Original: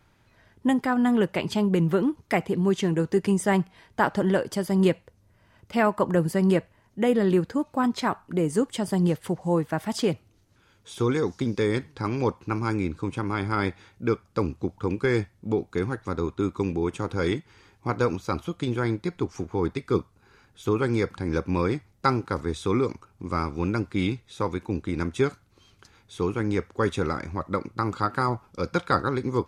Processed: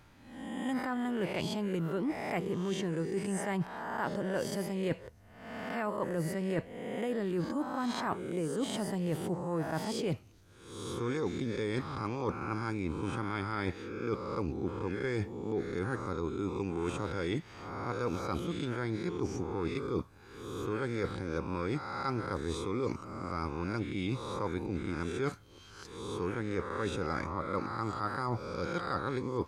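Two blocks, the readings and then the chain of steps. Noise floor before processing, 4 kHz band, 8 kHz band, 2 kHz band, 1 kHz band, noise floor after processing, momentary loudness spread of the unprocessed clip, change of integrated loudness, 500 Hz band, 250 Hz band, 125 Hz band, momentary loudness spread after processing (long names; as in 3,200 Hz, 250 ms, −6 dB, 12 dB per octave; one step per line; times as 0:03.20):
−62 dBFS, −6.0 dB, −5.5 dB, −7.5 dB, −8.0 dB, −55 dBFS, 8 LU, −9.0 dB, −8.5 dB, −9.5 dB, −8.5 dB, 5 LU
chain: peak hold with a rise ahead of every peak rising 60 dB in 0.69 s
reversed playback
downward compressor 12 to 1, threshold −30 dBFS, peak gain reduction 16.5 dB
reversed playback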